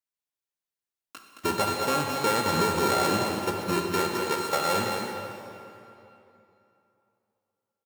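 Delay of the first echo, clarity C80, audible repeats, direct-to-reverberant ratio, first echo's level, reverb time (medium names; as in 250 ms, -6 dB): 219 ms, 1.5 dB, 1, 0.0 dB, -6.5 dB, 2.9 s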